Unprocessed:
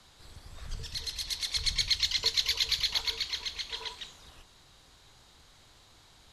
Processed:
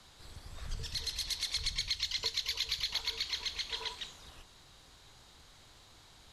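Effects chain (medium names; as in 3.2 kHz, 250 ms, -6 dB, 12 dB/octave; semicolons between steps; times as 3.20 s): compression 6:1, threshold -31 dBFS, peak gain reduction 9.5 dB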